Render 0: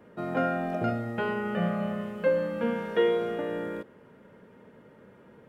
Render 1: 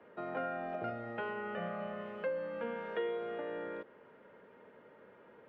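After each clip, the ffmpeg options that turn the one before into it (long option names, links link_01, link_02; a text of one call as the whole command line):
ffmpeg -i in.wav -filter_complex "[0:a]acrossover=split=350 3800:gain=0.224 1 0.0631[link_01][link_02][link_03];[link_01][link_02][link_03]amix=inputs=3:normalize=0,acrossover=split=140[link_04][link_05];[link_05]acompressor=threshold=-39dB:ratio=2[link_06];[link_04][link_06]amix=inputs=2:normalize=0,volume=-1.5dB" out.wav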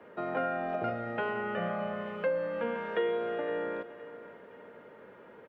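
ffmpeg -i in.wav -af "aecho=1:1:515|1030|1545:0.168|0.0638|0.0242,volume=6dB" out.wav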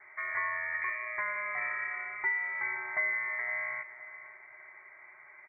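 ffmpeg -i in.wav -af "lowpass=frequency=2100:width_type=q:width=0.5098,lowpass=frequency=2100:width_type=q:width=0.6013,lowpass=frequency=2100:width_type=q:width=0.9,lowpass=frequency=2100:width_type=q:width=2.563,afreqshift=-2500,volume=-1.5dB" out.wav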